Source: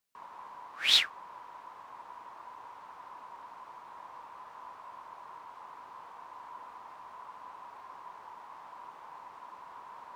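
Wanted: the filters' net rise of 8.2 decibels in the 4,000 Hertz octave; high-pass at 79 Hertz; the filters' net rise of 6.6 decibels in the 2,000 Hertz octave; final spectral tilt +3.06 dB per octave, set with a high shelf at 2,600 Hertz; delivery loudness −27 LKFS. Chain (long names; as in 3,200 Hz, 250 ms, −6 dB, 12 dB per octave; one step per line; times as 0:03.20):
high-pass filter 79 Hz
parametric band 2,000 Hz +4.5 dB
high-shelf EQ 2,600 Hz +3.5 dB
parametric band 4,000 Hz +5.5 dB
level −9.5 dB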